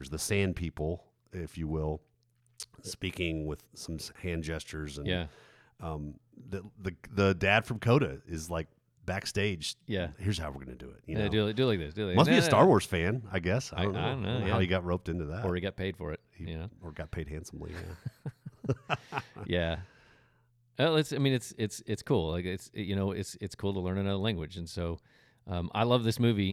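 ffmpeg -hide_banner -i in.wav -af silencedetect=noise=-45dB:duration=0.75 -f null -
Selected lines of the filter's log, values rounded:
silence_start: 19.85
silence_end: 20.78 | silence_duration: 0.94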